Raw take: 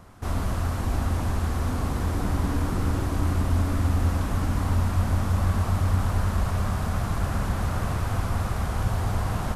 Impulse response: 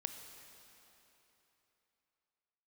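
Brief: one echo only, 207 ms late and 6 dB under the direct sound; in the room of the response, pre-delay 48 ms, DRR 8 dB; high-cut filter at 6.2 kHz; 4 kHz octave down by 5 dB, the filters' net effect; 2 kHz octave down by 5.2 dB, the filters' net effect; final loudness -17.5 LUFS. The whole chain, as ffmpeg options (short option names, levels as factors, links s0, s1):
-filter_complex "[0:a]lowpass=6200,equalizer=f=2000:t=o:g=-6.5,equalizer=f=4000:t=o:g=-3.5,aecho=1:1:207:0.501,asplit=2[s0][s1];[1:a]atrim=start_sample=2205,adelay=48[s2];[s1][s2]afir=irnorm=-1:irlink=0,volume=0.473[s3];[s0][s3]amix=inputs=2:normalize=0,volume=2.24"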